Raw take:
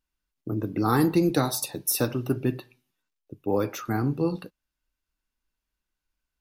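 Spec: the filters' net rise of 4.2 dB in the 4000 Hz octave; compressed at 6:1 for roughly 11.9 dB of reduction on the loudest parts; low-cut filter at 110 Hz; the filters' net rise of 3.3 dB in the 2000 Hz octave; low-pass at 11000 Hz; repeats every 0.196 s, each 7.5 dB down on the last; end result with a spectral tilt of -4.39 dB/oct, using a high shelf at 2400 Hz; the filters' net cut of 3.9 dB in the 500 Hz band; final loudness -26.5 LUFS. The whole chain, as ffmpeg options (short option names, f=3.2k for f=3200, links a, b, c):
-af "highpass=110,lowpass=11k,equalizer=f=500:t=o:g=-5.5,equalizer=f=2k:t=o:g=5,highshelf=f=2.4k:g=-3.5,equalizer=f=4k:t=o:g=7.5,acompressor=threshold=-32dB:ratio=6,aecho=1:1:196|392|588|784|980:0.422|0.177|0.0744|0.0312|0.0131,volume=9.5dB"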